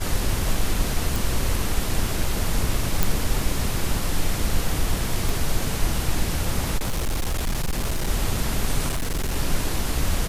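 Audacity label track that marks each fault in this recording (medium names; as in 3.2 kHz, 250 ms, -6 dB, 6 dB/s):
1.160000	1.160000	pop
3.030000	3.030000	pop
5.290000	5.290000	pop
6.770000	8.090000	clipped -20 dBFS
8.880000	9.360000	clipped -21 dBFS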